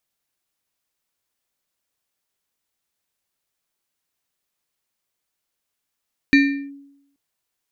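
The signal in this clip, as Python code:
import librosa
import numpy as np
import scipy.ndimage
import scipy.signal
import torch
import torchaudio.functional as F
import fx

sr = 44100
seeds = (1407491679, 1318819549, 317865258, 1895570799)

y = fx.fm2(sr, length_s=0.83, level_db=-7.5, carrier_hz=280.0, ratio=7.47, index=0.91, index_s=0.38, decay_s=0.83, shape='linear')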